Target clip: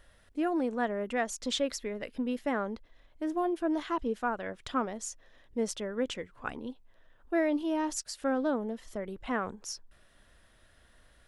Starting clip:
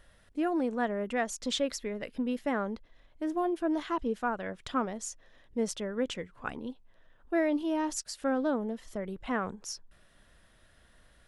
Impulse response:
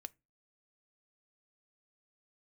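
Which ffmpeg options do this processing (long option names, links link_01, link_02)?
-af "equalizer=frequency=170:width_type=o:width=0.46:gain=-5"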